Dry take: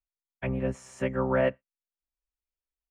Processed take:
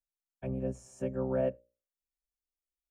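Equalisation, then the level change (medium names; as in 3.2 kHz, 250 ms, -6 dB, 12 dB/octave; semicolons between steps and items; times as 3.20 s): Butterworth band-stop 2 kHz, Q 6.6; high-order bell 2 kHz -12 dB 2.5 oct; hum notches 60/120/180/240/300/360/420/480/540/600 Hz; -4.5 dB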